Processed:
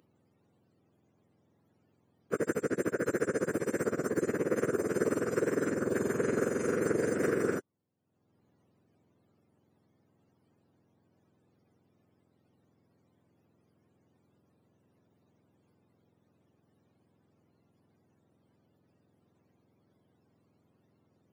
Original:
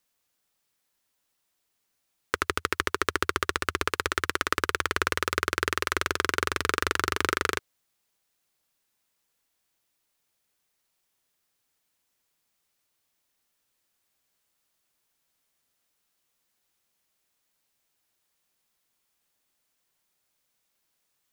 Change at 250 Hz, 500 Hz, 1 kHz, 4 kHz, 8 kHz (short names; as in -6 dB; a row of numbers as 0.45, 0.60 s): +6.0, +4.5, -13.0, -23.0, -7.5 dB